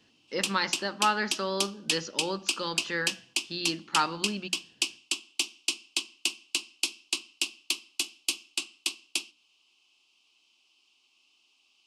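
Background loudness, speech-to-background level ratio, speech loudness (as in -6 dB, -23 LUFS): -31.5 LUFS, 0.0 dB, -31.5 LUFS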